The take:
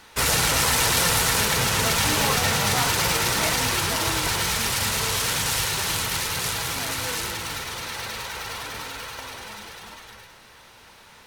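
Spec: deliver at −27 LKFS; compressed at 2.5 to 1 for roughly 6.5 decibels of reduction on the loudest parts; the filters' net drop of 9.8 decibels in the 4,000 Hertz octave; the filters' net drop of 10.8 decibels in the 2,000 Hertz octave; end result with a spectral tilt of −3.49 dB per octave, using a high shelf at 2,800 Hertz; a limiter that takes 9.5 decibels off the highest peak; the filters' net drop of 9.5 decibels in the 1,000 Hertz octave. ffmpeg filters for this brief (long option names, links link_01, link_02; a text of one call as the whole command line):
ffmpeg -i in.wav -af "equalizer=frequency=1000:width_type=o:gain=-9,equalizer=frequency=2000:width_type=o:gain=-7,highshelf=frequency=2800:gain=-7,equalizer=frequency=4000:width_type=o:gain=-4,acompressor=threshold=-33dB:ratio=2.5,volume=11dB,alimiter=limit=-17.5dB:level=0:latency=1" out.wav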